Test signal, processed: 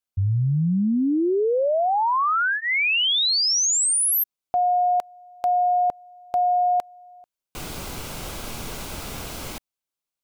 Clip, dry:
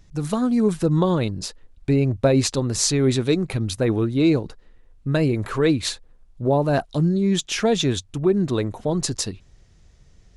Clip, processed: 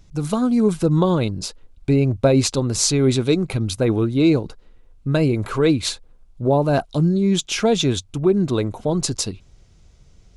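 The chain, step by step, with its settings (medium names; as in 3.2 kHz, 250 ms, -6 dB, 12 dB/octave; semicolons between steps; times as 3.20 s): band-stop 1.8 kHz, Q 6.5; trim +2 dB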